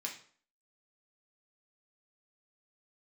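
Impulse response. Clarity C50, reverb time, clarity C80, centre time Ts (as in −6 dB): 8.0 dB, 0.50 s, 13.0 dB, 20 ms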